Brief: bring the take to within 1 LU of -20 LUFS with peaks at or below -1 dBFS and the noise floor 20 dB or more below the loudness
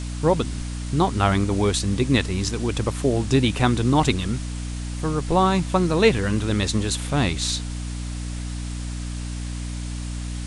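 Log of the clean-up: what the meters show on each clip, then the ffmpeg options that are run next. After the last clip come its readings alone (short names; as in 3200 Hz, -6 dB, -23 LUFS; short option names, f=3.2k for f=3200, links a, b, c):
hum 60 Hz; harmonics up to 300 Hz; hum level -27 dBFS; noise floor -30 dBFS; noise floor target -43 dBFS; loudness -23.0 LUFS; peak -4.0 dBFS; loudness target -20.0 LUFS
-> -af "bandreject=f=60:t=h:w=6,bandreject=f=120:t=h:w=6,bandreject=f=180:t=h:w=6,bandreject=f=240:t=h:w=6,bandreject=f=300:t=h:w=6"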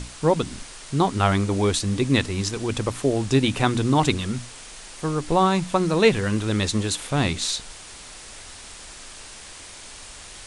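hum none; noise floor -42 dBFS; noise floor target -43 dBFS
-> -af "afftdn=nr=6:nf=-42"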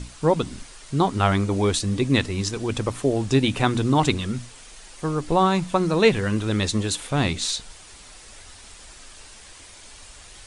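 noise floor -46 dBFS; loudness -23.0 LUFS; peak -4.5 dBFS; loudness target -20.0 LUFS
-> -af "volume=3dB"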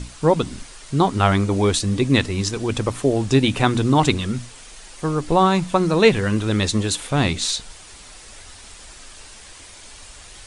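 loudness -20.0 LUFS; peak -1.5 dBFS; noise floor -43 dBFS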